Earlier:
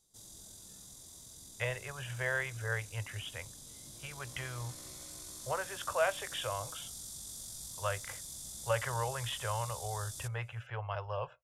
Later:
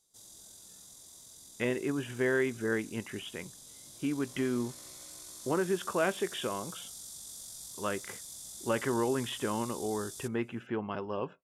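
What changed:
speech: remove Chebyshev band-stop 110–560 Hz, order 3; master: add bass shelf 180 Hz -11 dB

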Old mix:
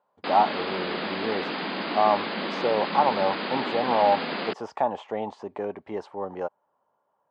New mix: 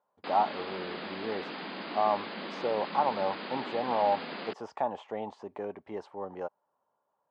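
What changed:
speech -6.0 dB; background -9.0 dB

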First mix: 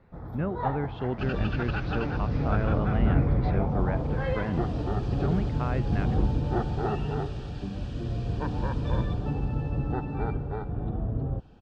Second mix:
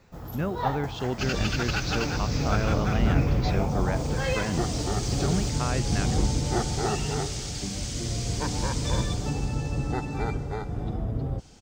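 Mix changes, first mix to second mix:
first sound: remove Butterworth band-stop 2.8 kHz, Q 2.9; second sound: remove Butterworth band-stop 2.1 kHz, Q 4.9; master: remove distance through air 490 m

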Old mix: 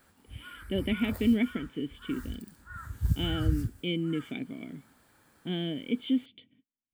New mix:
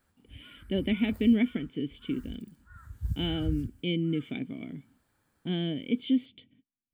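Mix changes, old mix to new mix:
background -11.0 dB; master: add bass shelf 120 Hz +9 dB

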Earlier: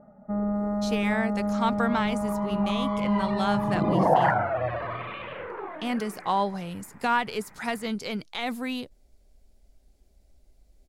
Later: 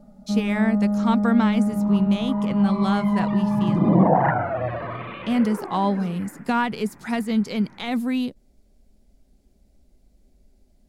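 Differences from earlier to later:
speech: entry -0.55 s; first sound -4.0 dB; master: add peaking EQ 210 Hz +10.5 dB 1.4 oct

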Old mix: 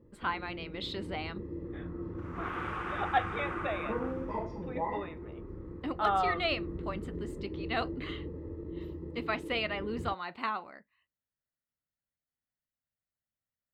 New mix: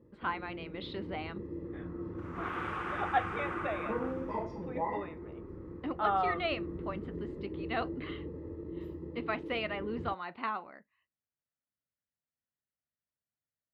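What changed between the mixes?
speech: add distance through air 260 m; master: add high-pass 88 Hz 6 dB/octave

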